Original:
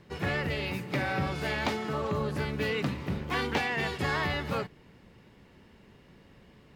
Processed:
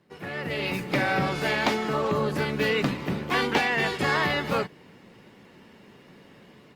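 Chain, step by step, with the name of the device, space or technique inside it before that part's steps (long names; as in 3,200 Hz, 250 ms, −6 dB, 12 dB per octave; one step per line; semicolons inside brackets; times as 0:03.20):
video call (high-pass filter 160 Hz 12 dB per octave; automatic gain control gain up to 12 dB; level −5.5 dB; Opus 32 kbit/s 48,000 Hz)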